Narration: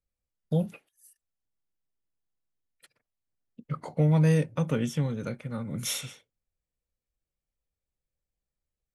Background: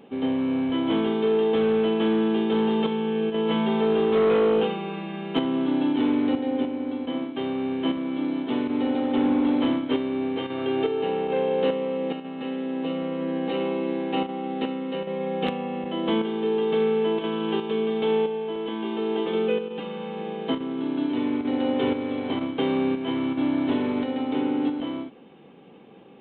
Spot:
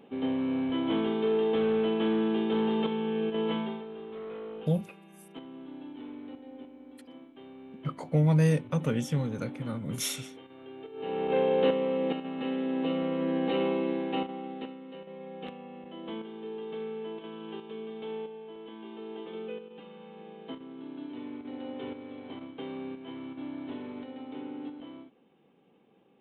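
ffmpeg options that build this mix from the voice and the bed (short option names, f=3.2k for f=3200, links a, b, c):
-filter_complex "[0:a]adelay=4150,volume=-1dB[a];[1:a]volume=14dB,afade=t=out:st=3.44:d=0.4:silence=0.16788,afade=t=in:st=10.92:d=0.43:silence=0.112202,afade=t=out:st=13.66:d=1.11:silence=0.211349[b];[a][b]amix=inputs=2:normalize=0"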